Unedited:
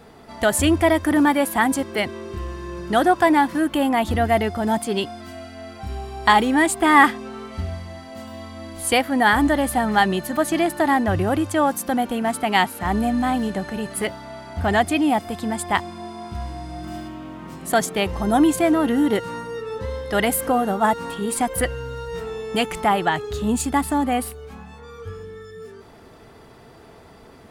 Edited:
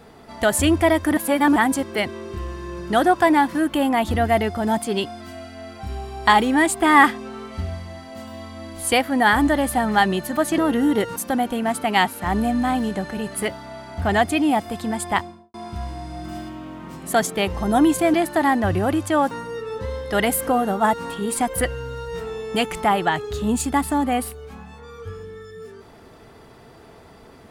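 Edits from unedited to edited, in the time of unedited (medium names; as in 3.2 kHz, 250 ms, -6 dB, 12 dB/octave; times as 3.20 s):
1.17–1.56 s: reverse
10.58–11.75 s: swap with 18.73–19.31 s
15.70–16.13 s: studio fade out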